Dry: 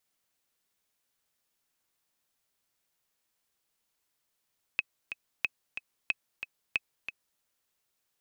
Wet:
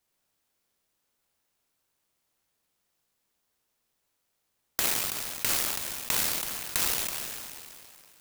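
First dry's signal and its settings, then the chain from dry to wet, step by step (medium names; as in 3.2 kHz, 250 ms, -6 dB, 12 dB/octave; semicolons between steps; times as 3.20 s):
metronome 183 bpm, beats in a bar 2, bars 4, 2.56 kHz, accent 9.5 dB -13.5 dBFS
spectral sustain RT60 2.46 s; sampling jitter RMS 0.14 ms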